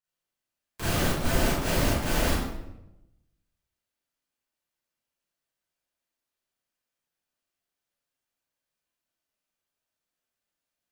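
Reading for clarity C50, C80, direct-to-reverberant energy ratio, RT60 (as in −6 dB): −1.5 dB, 2.5 dB, −10.5 dB, 0.85 s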